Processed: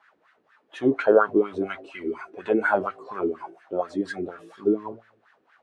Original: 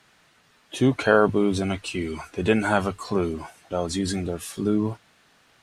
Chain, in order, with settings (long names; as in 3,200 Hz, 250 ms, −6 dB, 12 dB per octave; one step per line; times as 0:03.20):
hum removal 55.85 Hz, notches 14
LFO wah 4.2 Hz 330–1,700 Hz, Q 4.1
level +8 dB